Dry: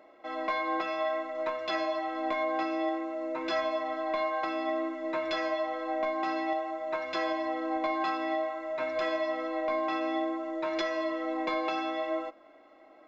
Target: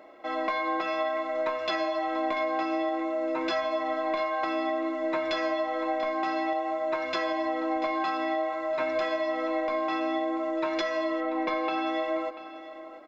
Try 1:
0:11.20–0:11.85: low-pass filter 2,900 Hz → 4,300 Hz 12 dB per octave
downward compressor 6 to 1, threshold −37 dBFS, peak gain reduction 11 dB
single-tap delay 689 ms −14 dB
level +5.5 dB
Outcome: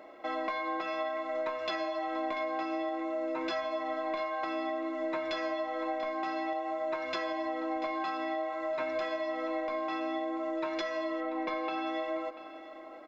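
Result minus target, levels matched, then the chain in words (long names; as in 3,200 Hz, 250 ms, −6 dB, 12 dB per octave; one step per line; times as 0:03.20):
downward compressor: peak gain reduction +5.5 dB
0:11.20–0:11.85: low-pass filter 2,900 Hz → 4,300 Hz 12 dB per octave
downward compressor 6 to 1, threshold −30.5 dBFS, peak gain reduction 5.5 dB
single-tap delay 689 ms −14 dB
level +5.5 dB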